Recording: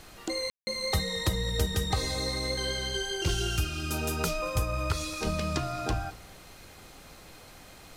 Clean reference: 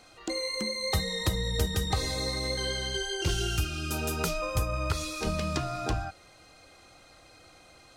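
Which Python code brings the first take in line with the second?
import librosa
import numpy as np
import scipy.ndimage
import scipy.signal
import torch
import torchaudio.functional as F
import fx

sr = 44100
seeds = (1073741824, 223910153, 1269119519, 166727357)

y = fx.fix_ambience(x, sr, seeds[0], print_start_s=7.36, print_end_s=7.86, start_s=0.5, end_s=0.67)
y = fx.noise_reduce(y, sr, print_start_s=7.36, print_end_s=7.86, reduce_db=6.0)
y = fx.fix_echo_inverse(y, sr, delay_ms=219, level_db=-21.5)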